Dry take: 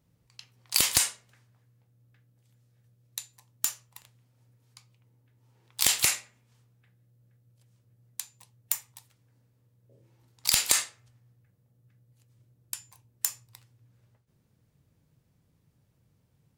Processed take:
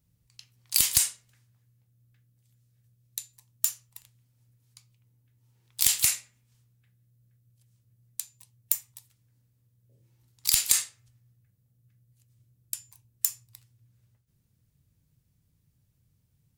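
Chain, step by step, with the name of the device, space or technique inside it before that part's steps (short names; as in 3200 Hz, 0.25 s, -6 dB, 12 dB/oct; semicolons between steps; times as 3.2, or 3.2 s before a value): smiley-face EQ (low shelf 110 Hz +6.5 dB; bell 620 Hz -8.5 dB 2.9 oct; high shelf 7300 Hz +7.5 dB); gain -2.5 dB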